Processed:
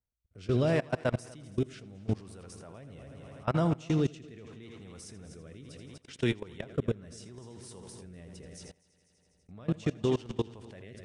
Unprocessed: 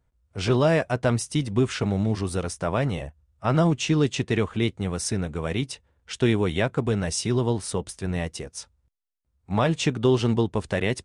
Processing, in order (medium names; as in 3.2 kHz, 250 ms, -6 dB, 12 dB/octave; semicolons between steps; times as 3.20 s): multi-head delay 82 ms, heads first and third, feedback 58%, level -12 dB; rotary cabinet horn 0.75 Hz; level held to a coarse grid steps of 22 dB; trim -3.5 dB